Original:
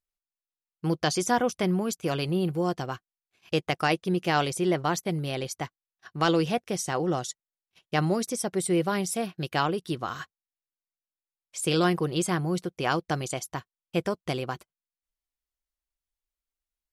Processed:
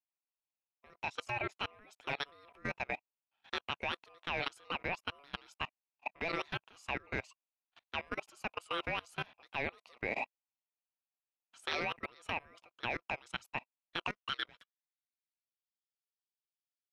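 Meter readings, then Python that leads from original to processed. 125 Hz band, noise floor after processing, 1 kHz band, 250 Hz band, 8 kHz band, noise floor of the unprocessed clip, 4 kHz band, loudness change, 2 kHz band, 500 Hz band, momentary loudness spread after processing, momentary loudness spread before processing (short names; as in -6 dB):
-20.0 dB, under -85 dBFS, -11.5 dB, -21.0 dB, -26.0 dB, under -85 dBFS, -7.5 dB, -12.0 dB, -4.5 dB, -16.0 dB, 7 LU, 12 LU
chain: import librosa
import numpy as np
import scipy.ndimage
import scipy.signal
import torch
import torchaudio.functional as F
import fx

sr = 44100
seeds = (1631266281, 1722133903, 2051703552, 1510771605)

y = fx.filter_sweep_bandpass(x, sr, from_hz=1700.0, to_hz=4000.0, start_s=13.86, end_s=15.62, q=5.1)
y = fx.level_steps(y, sr, step_db=24)
y = y * np.sin(2.0 * np.pi * 850.0 * np.arange(len(y)) / sr)
y = F.gain(torch.from_numpy(y), 15.5).numpy()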